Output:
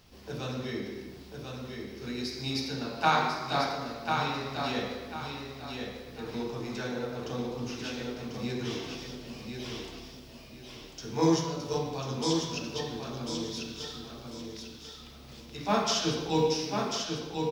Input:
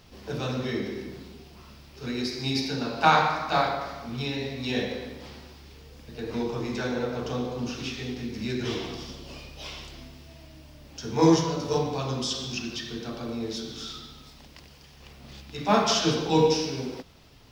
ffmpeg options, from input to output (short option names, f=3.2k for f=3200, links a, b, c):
-af "highshelf=f=6.2k:g=4.5,aecho=1:1:1044|2088|3132|4176:0.562|0.169|0.0506|0.0152,volume=-5.5dB"